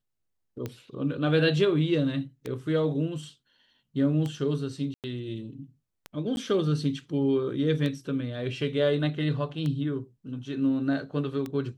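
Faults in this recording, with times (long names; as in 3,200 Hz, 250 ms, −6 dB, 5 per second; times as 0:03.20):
scratch tick 33 1/3 rpm −20 dBFS
0:04.94–0:05.04: drop-out 98 ms
0:06.36–0:06.37: drop-out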